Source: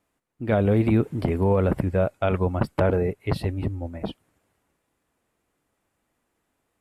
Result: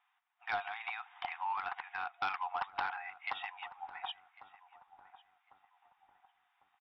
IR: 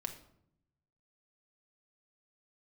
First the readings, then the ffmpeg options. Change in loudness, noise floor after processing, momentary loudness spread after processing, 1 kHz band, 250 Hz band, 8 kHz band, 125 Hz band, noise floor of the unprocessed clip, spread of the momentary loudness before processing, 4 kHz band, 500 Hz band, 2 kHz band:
−16.0 dB, −78 dBFS, 11 LU, −3.5 dB, below −40 dB, can't be measured, below −40 dB, −76 dBFS, 12 LU, −2.0 dB, −28.0 dB, −2.5 dB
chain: -filter_complex "[0:a]acompressor=threshold=-23dB:ratio=2.5,afftfilt=real='re*between(b*sr/4096,700,3800)':imag='im*between(b*sr/4096,700,3800)':win_size=4096:overlap=0.75,aresample=11025,asoftclip=type=tanh:threshold=-29dB,aresample=44100,asplit=2[link_01][link_02];[link_02]adelay=1100,lowpass=frequency=1000:poles=1,volume=-14dB,asplit=2[link_03][link_04];[link_04]adelay=1100,lowpass=frequency=1000:poles=1,volume=0.5,asplit=2[link_05][link_06];[link_06]adelay=1100,lowpass=frequency=1000:poles=1,volume=0.5,asplit=2[link_07][link_08];[link_08]adelay=1100,lowpass=frequency=1000:poles=1,volume=0.5,asplit=2[link_09][link_10];[link_10]adelay=1100,lowpass=frequency=1000:poles=1,volume=0.5[link_11];[link_01][link_03][link_05][link_07][link_09][link_11]amix=inputs=6:normalize=0,volume=2.5dB"

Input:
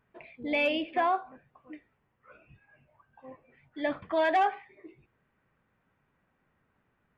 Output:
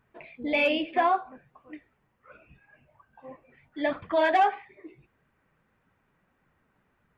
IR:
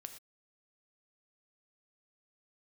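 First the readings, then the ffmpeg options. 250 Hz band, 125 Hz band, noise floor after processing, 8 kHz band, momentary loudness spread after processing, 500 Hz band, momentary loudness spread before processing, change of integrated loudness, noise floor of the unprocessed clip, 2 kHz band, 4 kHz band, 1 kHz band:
+2.5 dB, +2.0 dB, −72 dBFS, can't be measured, 9 LU, +3.0 dB, 9 LU, +3.0 dB, −75 dBFS, +3.0 dB, +3.0 dB, +3.5 dB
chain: -af "flanger=delay=0.5:depth=6.2:regen=-41:speed=1.7:shape=triangular,volume=7dB"

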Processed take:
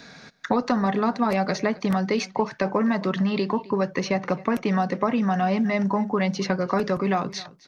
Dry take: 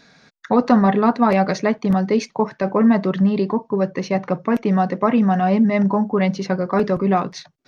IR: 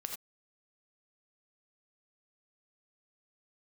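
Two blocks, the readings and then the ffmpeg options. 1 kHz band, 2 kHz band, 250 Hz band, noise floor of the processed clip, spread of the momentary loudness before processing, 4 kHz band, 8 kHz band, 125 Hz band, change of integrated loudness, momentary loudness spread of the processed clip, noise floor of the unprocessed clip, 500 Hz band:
−5.0 dB, −1.5 dB, −6.5 dB, −48 dBFS, 6 LU, +1.0 dB, can't be measured, −6.0 dB, −5.5 dB, 3 LU, −58 dBFS, −5.5 dB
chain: -filter_complex "[0:a]acrossover=split=97|950|5300[link_01][link_02][link_03][link_04];[link_01]acompressor=threshold=-55dB:ratio=4[link_05];[link_02]acompressor=threshold=-30dB:ratio=4[link_06];[link_03]acompressor=threshold=-36dB:ratio=4[link_07];[link_04]acompressor=threshold=-48dB:ratio=4[link_08];[link_05][link_06][link_07][link_08]amix=inputs=4:normalize=0,aecho=1:1:264:0.0944,volume=6dB"

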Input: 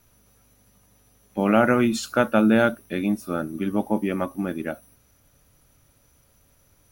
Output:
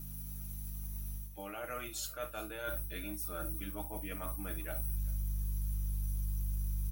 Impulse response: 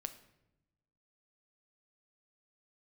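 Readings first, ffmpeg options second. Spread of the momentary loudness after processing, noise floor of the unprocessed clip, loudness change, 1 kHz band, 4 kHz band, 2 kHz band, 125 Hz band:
6 LU, −61 dBFS, −16.5 dB, −18.5 dB, −11.5 dB, −17.5 dB, −6.0 dB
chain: -filter_complex "[0:a]aemphasis=mode=production:type=riaa[link_01];[1:a]atrim=start_sample=2205,atrim=end_sample=3528[link_02];[link_01][link_02]afir=irnorm=-1:irlink=0,aeval=exprs='val(0)+0.00794*(sin(2*PI*50*n/s)+sin(2*PI*2*50*n/s)/2+sin(2*PI*3*50*n/s)/3+sin(2*PI*4*50*n/s)/4+sin(2*PI*5*50*n/s)/5)':channel_layout=same,areverse,acompressor=threshold=-36dB:ratio=16,areverse,aecho=1:1:6.5:0.73,asubboost=boost=7.5:cutoff=87,aecho=1:1:390:0.0708,volume=-2.5dB"

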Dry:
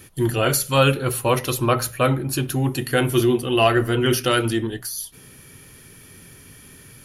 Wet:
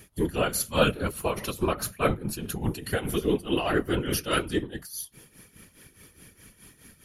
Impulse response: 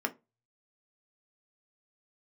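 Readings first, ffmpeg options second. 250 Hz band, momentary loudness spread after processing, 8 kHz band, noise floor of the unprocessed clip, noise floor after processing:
−6.5 dB, 9 LU, −7.0 dB, −47 dBFS, −60 dBFS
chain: -af "afftfilt=real='hypot(re,im)*cos(2*PI*random(0))':imag='hypot(re,im)*sin(2*PI*random(1))':win_size=512:overlap=0.75,tremolo=f=4.8:d=0.75,volume=2dB"

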